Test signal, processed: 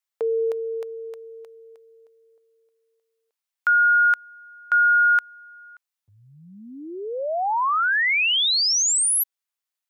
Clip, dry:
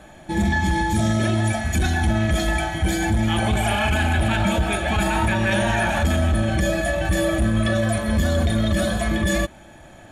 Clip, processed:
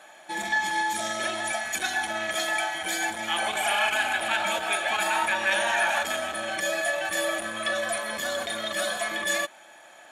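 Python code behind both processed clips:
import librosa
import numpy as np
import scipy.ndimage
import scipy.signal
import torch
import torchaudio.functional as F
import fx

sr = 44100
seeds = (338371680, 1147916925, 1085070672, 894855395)

y = scipy.signal.sosfilt(scipy.signal.butter(2, 760.0, 'highpass', fs=sr, output='sos'), x)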